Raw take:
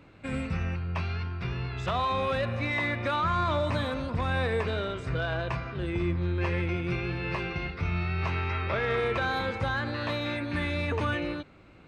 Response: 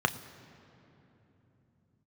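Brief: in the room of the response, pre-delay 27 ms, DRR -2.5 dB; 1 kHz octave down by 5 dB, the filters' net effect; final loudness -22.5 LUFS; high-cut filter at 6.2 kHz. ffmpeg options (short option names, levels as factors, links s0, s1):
-filter_complex "[0:a]lowpass=6200,equalizer=f=1000:t=o:g=-6.5,asplit=2[s0][s1];[1:a]atrim=start_sample=2205,adelay=27[s2];[s1][s2]afir=irnorm=-1:irlink=0,volume=0.376[s3];[s0][s3]amix=inputs=2:normalize=0,volume=1.78"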